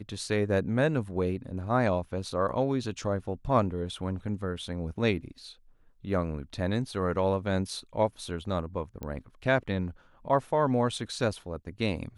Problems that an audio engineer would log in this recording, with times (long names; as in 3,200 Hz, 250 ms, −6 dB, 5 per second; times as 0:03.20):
0:09.03: click −23 dBFS